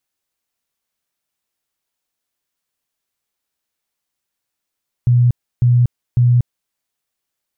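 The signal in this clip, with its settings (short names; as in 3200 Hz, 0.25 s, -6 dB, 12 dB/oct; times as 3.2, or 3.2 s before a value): tone bursts 122 Hz, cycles 29, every 0.55 s, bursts 3, -8.5 dBFS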